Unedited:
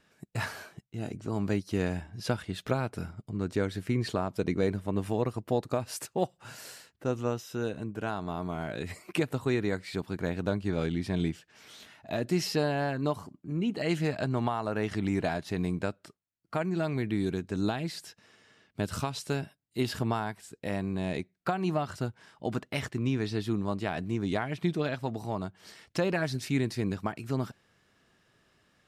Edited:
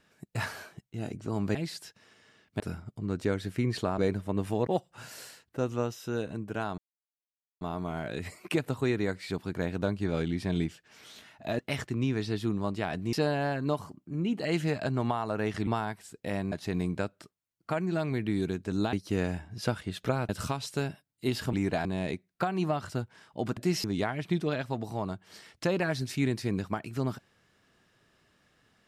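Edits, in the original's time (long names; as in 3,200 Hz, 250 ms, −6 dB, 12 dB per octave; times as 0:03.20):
0:01.55–0:02.91: swap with 0:17.77–0:18.82
0:04.29–0:04.57: remove
0:05.26–0:06.14: remove
0:08.25: splice in silence 0.83 s
0:12.23–0:12.50: swap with 0:22.63–0:24.17
0:15.04–0:15.36: swap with 0:20.06–0:20.91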